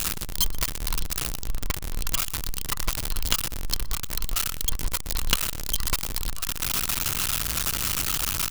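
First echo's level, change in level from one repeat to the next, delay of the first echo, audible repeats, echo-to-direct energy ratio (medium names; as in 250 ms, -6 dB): -23.0 dB, -11.5 dB, 121 ms, 2, -22.5 dB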